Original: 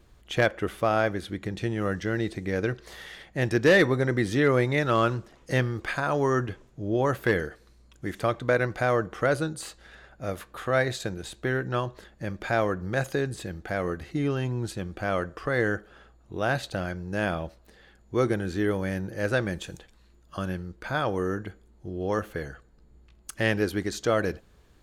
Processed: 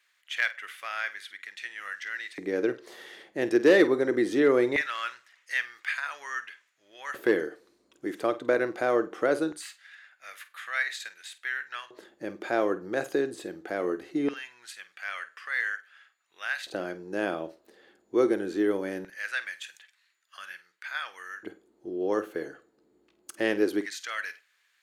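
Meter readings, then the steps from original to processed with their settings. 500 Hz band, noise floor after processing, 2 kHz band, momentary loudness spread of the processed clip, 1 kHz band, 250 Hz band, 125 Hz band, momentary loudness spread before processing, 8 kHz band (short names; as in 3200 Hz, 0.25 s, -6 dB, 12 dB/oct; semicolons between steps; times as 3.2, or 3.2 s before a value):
-1.5 dB, -70 dBFS, -1.0 dB, 17 LU, -6.0 dB, -1.5 dB, -20.5 dB, 13 LU, -3.5 dB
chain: LFO high-pass square 0.21 Hz 330–1900 Hz; flutter echo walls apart 8.5 m, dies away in 0.21 s; gain -4 dB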